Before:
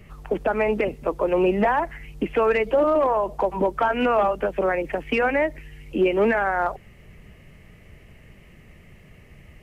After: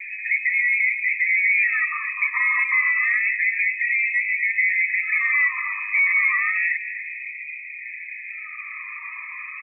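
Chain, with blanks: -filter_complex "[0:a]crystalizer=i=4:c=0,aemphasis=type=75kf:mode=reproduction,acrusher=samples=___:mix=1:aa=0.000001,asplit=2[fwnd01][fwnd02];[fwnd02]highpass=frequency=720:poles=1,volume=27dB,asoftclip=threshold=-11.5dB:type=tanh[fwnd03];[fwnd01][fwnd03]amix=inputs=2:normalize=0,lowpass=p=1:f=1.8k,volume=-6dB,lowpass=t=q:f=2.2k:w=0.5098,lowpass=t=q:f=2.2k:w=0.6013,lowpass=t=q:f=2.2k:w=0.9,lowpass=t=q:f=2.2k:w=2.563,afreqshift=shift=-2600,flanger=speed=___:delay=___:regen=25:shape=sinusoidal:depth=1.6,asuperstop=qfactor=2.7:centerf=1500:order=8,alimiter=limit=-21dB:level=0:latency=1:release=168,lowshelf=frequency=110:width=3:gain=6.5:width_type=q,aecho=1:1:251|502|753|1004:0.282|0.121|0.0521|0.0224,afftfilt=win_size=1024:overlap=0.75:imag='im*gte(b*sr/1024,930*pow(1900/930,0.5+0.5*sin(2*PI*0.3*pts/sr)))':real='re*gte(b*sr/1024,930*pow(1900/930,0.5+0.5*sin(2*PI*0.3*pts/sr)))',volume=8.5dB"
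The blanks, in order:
14, 0.6, 6.2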